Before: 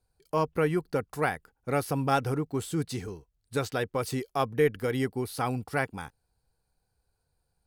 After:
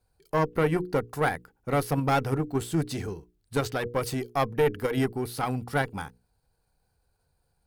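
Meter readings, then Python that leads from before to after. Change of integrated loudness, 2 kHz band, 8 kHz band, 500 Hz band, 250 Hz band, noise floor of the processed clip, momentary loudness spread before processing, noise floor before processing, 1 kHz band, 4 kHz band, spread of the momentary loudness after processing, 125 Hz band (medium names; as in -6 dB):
+1.5 dB, +1.5 dB, +1.0 dB, +1.5 dB, +2.0 dB, -74 dBFS, 9 LU, -78 dBFS, +2.0 dB, +2.0 dB, 8 LU, +2.5 dB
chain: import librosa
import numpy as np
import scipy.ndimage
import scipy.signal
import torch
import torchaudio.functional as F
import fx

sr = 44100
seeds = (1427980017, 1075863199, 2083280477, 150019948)

p1 = fx.diode_clip(x, sr, knee_db=-25.0)
p2 = fx.peak_eq(p1, sr, hz=7100.0, db=-3.0, octaves=2.1)
p3 = fx.hum_notches(p2, sr, base_hz=60, count=8)
p4 = fx.level_steps(p3, sr, step_db=10)
y = p3 + (p4 * 10.0 ** (1.0 / 20.0))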